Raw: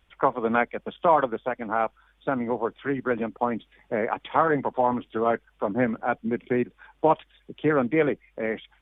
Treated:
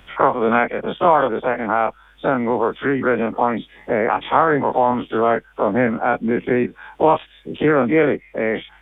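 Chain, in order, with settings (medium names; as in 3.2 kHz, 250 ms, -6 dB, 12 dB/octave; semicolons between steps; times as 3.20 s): every event in the spectrogram widened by 60 ms; three bands compressed up and down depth 40%; trim +3.5 dB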